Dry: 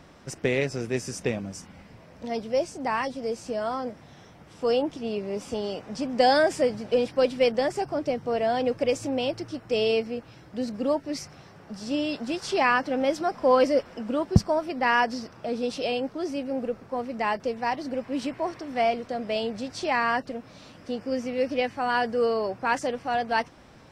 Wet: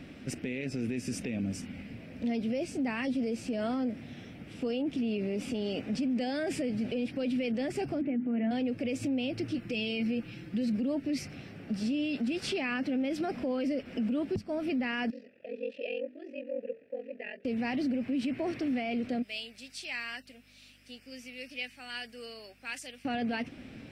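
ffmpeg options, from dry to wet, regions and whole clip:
ffmpeg -i in.wav -filter_complex "[0:a]asettb=1/sr,asplit=3[link_01][link_02][link_03];[link_01]atrim=end=8.014[link_04];[link_02]atrim=start=8.01:end=8.51,asetpts=PTS-STARTPTS,afade=type=in:duration=0.004:curve=qsin,afade=type=out:start_time=0.496:duration=0.004:curve=qsin,highpass=frequency=120:width=0.5412,highpass=frequency=120:width=1.3066,equalizer=frequency=220:width_type=q:width=4:gain=7,equalizer=frequency=550:width_type=q:width=4:gain=-8,equalizer=frequency=1100:width_type=q:width=4:gain=-7,lowpass=frequency=2200:width=0.5412,lowpass=frequency=2200:width=1.3066,bandreject=frequency=50:width_type=h:width=6,bandreject=frequency=100:width_type=h:width=6,bandreject=frequency=150:width_type=h:width=6,bandreject=frequency=200:width_type=h:width=6,bandreject=frequency=250:width_type=h:width=6,bandreject=frequency=300:width_type=h:width=6,bandreject=frequency=350:width_type=h:width=6,bandreject=frequency=400:width_type=h:width=6,bandreject=frequency=450:width_type=h:width=6,aecho=1:1:3.5:0.4,atrim=end_sample=22050[link_05];[link_03]atrim=start=8.506[link_06];[link_04][link_05]acrossfade=duration=0.004:curve1=hsin:curve2=qsin[link_07];[link_07][link_06]acrossfade=duration=0.004:curve1=qsin:curve2=hsin,asettb=1/sr,asplit=3[link_08][link_09][link_10];[link_08]atrim=end=9.544[link_11];[link_09]atrim=start=9.54:end=10.75,asetpts=PTS-STARTPTS,afade=type=in:duration=0.004:curve=qsin,afade=type=out:start_time=1.206:duration=0.004:curve=qsin,equalizer=frequency=630:width_type=o:width=0.69:gain=-6,aecho=1:1:5.8:0.57,atrim=end_sample=53361,acompressor=threshold=-30dB:ratio=6:attack=3.2:release=140:knee=1:detection=peak[link_12];[link_10]atrim=start=10.746[link_13];[link_11][link_12]acrossfade=duration=0.004:curve1=hsin:curve2=qsin[link_14];[link_14][link_13]acrossfade=duration=0.004:curve1=qsin:curve2=hsin,asettb=1/sr,asplit=3[link_15][link_16][link_17];[link_15]atrim=end=15.104[link_18];[link_16]atrim=start=15.1:end=17.45,asetpts=PTS-STARTPTS,afade=type=in:duration=0.004:curve=qsin,afade=type=out:start_time=2.346:duration=0.004:curve=qsin,asplit=3[link_19][link_20][link_21];[link_19]bandpass=frequency=530:width_type=q:width=8,volume=0dB[link_22];[link_20]bandpass=frequency=1840:width_type=q:width=8,volume=-6dB[link_23];[link_21]bandpass=frequency=2480:width_type=q:width=8,volume=-9dB[link_24];[link_22][link_23][link_24]amix=inputs=3:normalize=0,aeval=exprs='val(0)*sin(2*PI*22*n/s)':channel_layout=same,bandreject=frequency=50:width_type=h:width=6,bandreject=frequency=100:width_type=h:width=6,bandreject=frequency=150:width_type=h:width=6,bandreject=frequency=200:width_type=h:width=6,bandreject=frequency=250:width_type=h:width=6,bandreject=frequency=300:width_type=h:width=6,bandreject=frequency=350:width_type=h:width=6,bandreject=frequency=400:width_type=h:width=6,bandreject=frequency=450:width_type=h:width=6[link_25];[link_17]atrim=start=17.446[link_26];[link_18][link_25]acrossfade=duration=0.004:curve1=hsin:curve2=qsin[link_27];[link_27][link_26]acrossfade=duration=0.004:curve1=qsin:curve2=hsin,asettb=1/sr,asplit=3[link_28][link_29][link_30];[link_28]atrim=end=19.224[link_31];[link_29]atrim=start=19.22:end=23.05,asetpts=PTS-STARTPTS,afade=type=in:duration=0.004:curve=qsin,afade=type=out:start_time=3.826:duration=0.004:curve=qsin,aderivative,aeval=exprs='val(0)+0.000398*(sin(2*PI*50*n/s)+sin(2*PI*2*50*n/s)/2+sin(2*PI*3*50*n/s)/3+sin(2*PI*4*50*n/s)/4+sin(2*PI*5*50*n/s)/5)':channel_layout=same[link_32];[link_30]atrim=start=23.046[link_33];[link_31][link_32]acrossfade=duration=0.004:curve1=hsin:curve2=qsin[link_34];[link_34][link_33]acrossfade=duration=0.004:curve1=qsin:curve2=hsin,equalizer=frequency=100:width_type=o:width=0.67:gain=4,equalizer=frequency=250:width_type=o:width=0.67:gain=12,equalizer=frequency=1000:width_type=o:width=0.67:gain=-12,equalizer=frequency=2500:width_type=o:width=0.67:gain=9,equalizer=frequency=6300:width_type=o:width=0.67:gain=-6,acompressor=threshold=-23dB:ratio=6,alimiter=level_in=1dB:limit=-24dB:level=0:latency=1:release=23,volume=-1dB" out.wav

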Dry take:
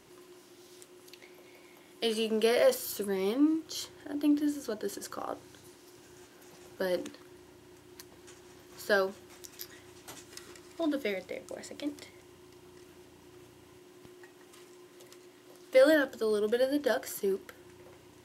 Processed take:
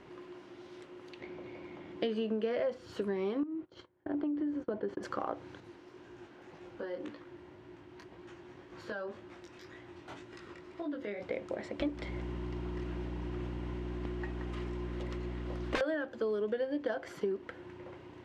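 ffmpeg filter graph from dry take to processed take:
ffmpeg -i in.wav -filter_complex "[0:a]asettb=1/sr,asplit=3[link_01][link_02][link_03];[link_01]atrim=end=1.204[link_04];[link_02]atrim=start=1.2:end=2.92,asetpts=PTS-STARTPTS,afade=type=in:duration=0.004:curve=qsin,afade=type=out:start_time=1.716:duration=0.004:curve=qsin,lowpass=7900,lowshelf=frequency=330:gain=8.5[link_05];[link_03]atrim=start=2.916[link_06];[link_04][link_05]acrossfade=duration=0.004:curve1=hsin:curve2=qsin[link_07];[link_07][link_06]acrossfade=duration=0.004:curve1=qsin:curve2=hsin,asettb=1/sr,asplit=3[link_08][link_09][link_10];[link_08]atrim=end=3.434[link_11];[link_09]atrim=start=3.43:end=5.03,asetpts=PTS-STARTPTS,afade=type=in:duration=0.004:curve=qsin,afade=type=out:start_time=1.596:duration=0.004:curve=qsin,lowpass=frequency=1200:poles=1,agate=range=-25dB:threshold=-48dB:ratio=16:release=100:detection=peak,acompressor=threshold=-32dB:ratio=10:attack=3.2:release=140:knee=1:detection=peak[link_12];[link_10]atrim=start=5.026[link_13];[link_11][link_12]acrossfade=duration=0.004:curve1=hsin:curve2=qsin[link_14];[link_14][link_13]acrossfade=duration=0.004:curve1=qsin:curve2=hsin,asettb=1/sr,asplit=3[link_15][link_16][link_17];[link_15]atrim=end=5.604[link_18];[link_16]atrim=start=5.6:end=11.22,asetpts=PTS-STARTPTS,afade=type=in:duration=0.004:curve=qsin,afade=type=out:start_time=5.616:duration=0.004:curve=qsin,acompressor=threshold=-38dB:ratio=6:attack=3.2:release=140:knee=1:detection=peak,flanger=delay=17:depth=7.6:speed=1.9[link_19];[link_17]atrim=start=11.216[link_20];[link_18][link_19]acrossfade=duration=0.004:curve1=hsin:curve2=qsin[link_21];[link_21][link_20]acrossfade=duration=0.004:curve1=qsin:curve2=hsin,asettb=1/sr,asplit=3[link_22][link_23][link_24];[link_22]atrim=end=11.804[link_25];[link_23]atrim=start=11.8:end=15.81,asetpts=PTS-STARTPTS,afade=type=in:duration=0.004:curve=qsin,afade=type=out:start_time=4.006:duration=0.004:curve=qsin,acontrast=59,aeval=exprs='val(0)+0.00631*(sin(2*PI*60*n/s)+sin(2*PI*2*60*n/s)/2+sin(2*PI*3*60*n/s)/3+sin(2*PI*4*60*n/s)/4+sin(2*PI*5*60*n/s)/5)':channel_layout=same,aeval=exprs='(mod(8.41*val(0)+1,2)-1)/8.41':channel_layout=same[link_26];[link_24]atrim=start=15.806[link_27];[link_25][link_26]acrossfade=duration=0.004:curve1=hsin:curve2=qsin[link_28];[link_28][link_27]acrossfade=duration=0.004:curve1=qsin:curve2=hsin,lowpass=2400,acompressor=threshold=-36dB:ratio=8,volume=5.5dB" out.wav

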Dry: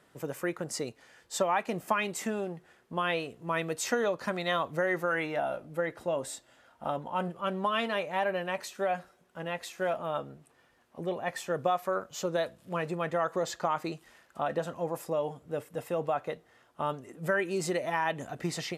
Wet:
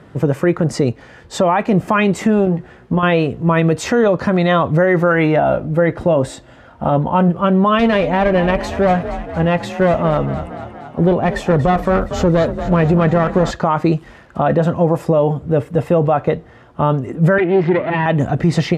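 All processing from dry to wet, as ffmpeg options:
ffmpeg -i in.wav -filter_complex "[0:a]asettb=1/sr,asplit=3[link_01][link_02][link_03];[link_01]atrim=end=2.454[link_04];[link_02]atrim=start=2.45:end=3.03,asetpts=PTS-STARTPTS,afade=type=in:duration=0.004:curve=qsin,afade=type=out:start_time=0.576:duration=0.004:curve=qsin,acompressor=threshold=-35dB:ratio=5:attack=3.2:release=140:knee=1:detection=peak,asplit=2[link_05][link_06];[link_06]adelay=16,volume=-6.5dB[link_07];[link_05][link_07]amix=inputs=2:normalize=0,atrim=end_sample=25578[link_08];[link_03]atrim=start=3.026[link_09];[link_04][link_08]acrossfade=duration=0.004:curve1=hsin:curve2=qsin[link_10];[link_10][link_09]acrossfade=duration=0.004:curve1=qsin:curve2=hsin,asettb=1/sr,asplit=3[link_11][link_12][link_13];[link_11]atrim=end=7.794[link_14];[link_12]atrim=start=7.79:end=13.51,asetpts=PTS-STARTPTS,afade=type=in:duration=0.004:curve=qsin,afade=type=out:start_time=5.716:duration=0.004:curve=qsin,aeval=exprs='clip(val(0),-1,0.0237)':channel_layout=same,asplit=8[link_15][link_16][link_17][link_18][link_19][link_20][link_21][link_22];[link_16]adelay=234,afreqshift=38,volume=-13.5dB[link_23];[link_17]adelay=468,afreqshift=76,volume=-17.4dB[link_24];[link_18]adelay=702,afreqshift=114,volume=-21.3dB[link_25];[link_19]adelay=936,afreqshift=152,volume=-25.1dB[link_26];[link_20]adelay=1170,afreqshift=190,volume=-29dB[link_27];[link_21]adelay=1404,afreqshift=228,volume=-32.9dB[link_28];[link_22]adelay=1638,afreqshift=266,volume=-36.8dB[link_29];[link_15][link_23][link_24][link_25][link_26][link_27][link_28][link_29]amix=inputs=8:normalize=0,atrim=end_sample=252252[link_30];[link_13]atrim=start=13.506[link_31];[link_14][link_30]acrossfade=duration=0.004:curve1=hsin:curve2=qsin[link_32];[link_32][link_31]acrossfade=duration=0.004:curve1=qsin:curve2=hsin,asettb=1/sr,asplit=3[link_33][link_34][link_35];[link_33]atrim=end=17.384[link_36];[link_34]atrim=start=17.38:end=18.06,asetpts=PTS-STARTPTS,afade=type=in:duration=0.004:curve=qsin,afade=type=out:start_time=0.676:duration=0.004:curve=qsin,aeval=exprs='max(val(0),0)':channel_layout=same,highpass=frequency=130:width=0.5412,highpass=frequency=130:width=1.3066,equalizer=frequency=350:width_type=q:width=4:gain=5,equalizer=frequency=1200:width_type=q:width=4:gain=-6,equalizer=frequency=2000:width_type=q:width=4:gain=6,lowpass=frequency=3200:width=0.5412,lowpass=frequency=3200:width=1.3066[link_37];[link_35]atrim=start=18.056[link_38];[link_36][link_37]acrossfade=duration=0.004:curve1=hsin:curve2=qsin[link_39];[link_39][link_38]acrossfade=duration=0.004:curve1=qsin:curve2=hsin,highpass=49,aemphasis=mode=reproduction:type=riaa,alimiter=level_in=21.5dB:limit=-1dB:release=50:level=0:latency=1,volume=-4.5dB" out.wav

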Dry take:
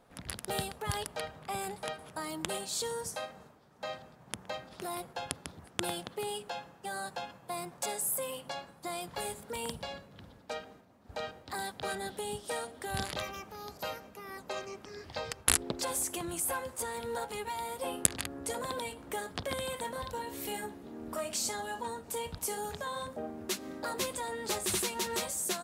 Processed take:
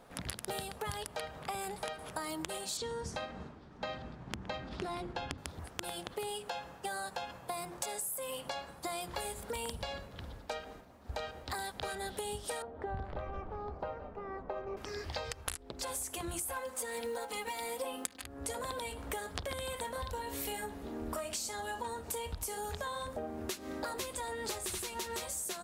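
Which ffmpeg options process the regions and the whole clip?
ffmpeg -i in.wav -filter_complex "[0:a]asettb=1/sr,asplit=3[link_01][link_02][link_03];[link_01]atrim=end=2.774[link_04];[link_02]atrim=start=2.77:end=5.38,asetpts=PTS-STARTPTS,afade=type=in:duration=0.004:curve=qsin,afade=type=out:start_time=2.606:duration=0.004:curve=qsin,lowpass=4700,lowshelf=frequency=400:width_type=q:width=1.5:gain=6[link_05];[link_03]atrim=start=5.376[link_06];[link_04][link_05]acrossfade=duration=0.004:curve1=hsin:curve2=qsin[link_07];[link_07][link_06]acrossfade=duration=0.004:curve1=qsin:curve2=hsin,asettb=1/sr,asplit=3[link_08][link_09][link_10];[link_08]atrim=end=12.624[link_11];[link_09]atrim=start=12.62:end=14.77,asetpts=PTS-STARTPTS,afade=type=in:duration=0.004:curve=qsin,afade=type=out:start_time=2.146:duration=0.004:curve=qsin,lowpass=1000,asplit=5[link_12][link_13][link_14][link_15][link_16];[link_13]adelay=169,afreqshift=-40,volume=-16dB[link_17];[link_14]adelay=338,afreqshift=-80,volume=-22.6dB[link_18];[link_15]adelay=507,afreqshift=-120,volume=-29.1dB[link_19];[link_16]adelay=676,afreqshift=-160,volume=-35.7dB[link_20];[link_12][link_17][link_18][link_19][link_20]amix=inputs=5:normalize=0,atrim=end_sample=94815[link_21];[link_10]atrim=start=14.766[link_22];[link_11][link_21]acrossfade=duration=0.004:curve1=hsin:curve2=qsin[link_23];[link_23][link_22]acrossfade=duration=0.004:curve1=qsin:curve2=hsin,asettb=1/sr,asplit=3[link_24][link_25][link_26];[link_24]atrim=end=16.564[link_27];[link_25]atrim=start=16.56:end=18.23,asetpts=PTS-STARTPTS,afade=type=in:duration=0.004:curve=qsin,afade=type=out:start_time=1.666:duration=0.004:curve=qsin,highpass=160,acrusher=bits=7:mode=log:mix=0:aa=0.000001,aecho=1:1:3.9:0.92,atrim=end_sample=73647[link_28];[link_26]atrim=start=18.226[link_29];[link_27][link_28]acrossfade=duration=0.004:curve1=hsin:curve2=qsin[link_30];[link_30][link_29]acrossfade=duration=0.004:curve1=qsin:curve2=hsin,bandreject=frequency=50:width_type=h:width=6,bandreject=frequency=100:width_type=h:width=6,bandreject=frequency=150:width_type=h:width=6,bandreject=frequency=200:width_type=h:width=6,bandreject=frequency=250:width_type=h:width=6,bandreject=frequency=300:width_type=h:width=6,bandreject=frequency=350:width_type=h:width=6,asubboost=boost=6:cutoff=61,acompressor=threshold=-41dB:ratio=20,volume=6dB" out.wav

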